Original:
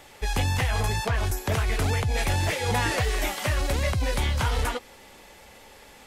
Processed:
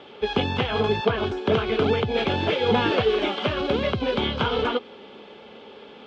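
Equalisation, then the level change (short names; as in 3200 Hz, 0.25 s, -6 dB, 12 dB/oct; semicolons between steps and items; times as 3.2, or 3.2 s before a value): speaker cabinet 200–3900 Hz, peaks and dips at 220 Hz +6 dB, 420 Hz +10 dB, 1300 Hz +5 dB, 3200 Hz +9 dB; low shelf 490 Hz +8.5 dB; notch 1900 Hz, Q 5.9; 0.0 dB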